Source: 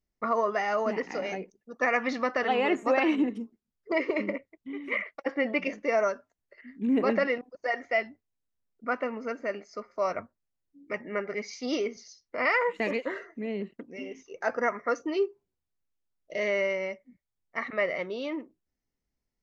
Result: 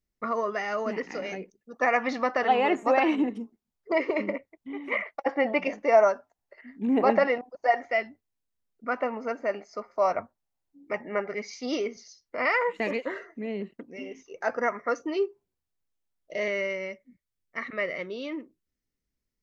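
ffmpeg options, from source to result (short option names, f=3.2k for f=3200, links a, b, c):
-af "asetnsamples=n=441:p=0,asendcmd='1.73 equalizer g 6;4.72 equalizer g 12.5;7.91 equalizer g 1;8.97 equalizer g 9.5;11.28 equalizer g 1.5;16.48 equalizer g -8',equalizer=f=800:t=o:w=0.73:g=-5"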